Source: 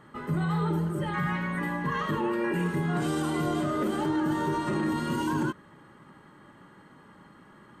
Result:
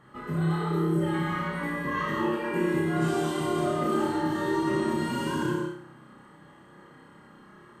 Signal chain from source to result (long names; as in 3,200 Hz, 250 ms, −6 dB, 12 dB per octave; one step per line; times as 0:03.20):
flutter between parallel walls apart 5.3 metres, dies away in 0.52 s
reverb whose tail is shaped and stops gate 220 ms flat, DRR 0.5 dB
level −4 dB